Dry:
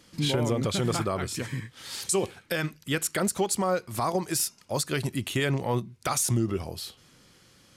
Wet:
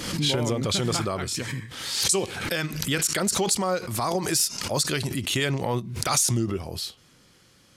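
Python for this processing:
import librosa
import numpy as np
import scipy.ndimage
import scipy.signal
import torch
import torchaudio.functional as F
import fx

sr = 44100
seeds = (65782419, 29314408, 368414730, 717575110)

y = fx.dynamic_eq(x, sr, hz=5100.0, q=0.72, threshold_db=-43.0, ratio=4.0, max_db=7)
y = fx.pre_swell(y, sr, db_per_s=51.0)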